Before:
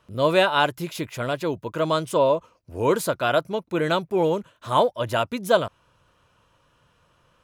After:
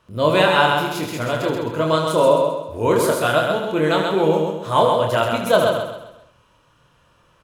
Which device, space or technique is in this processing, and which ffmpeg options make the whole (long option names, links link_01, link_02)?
slapback doubling: -filter_complex "[0:a]aecho=1:1:131|262|393|524|655:0.631|0.246|0.096|0.0374|0.0146,asplit=3[link_01][link_02][link_03];[link_02]adelay=26,volume=-4.5dB[link_04];[link_03]adelay=76,volume=-7.5dB[link_05];[link_01][link_04][link_05]amix=inputs=3:normalize=0,volume=1.5dB"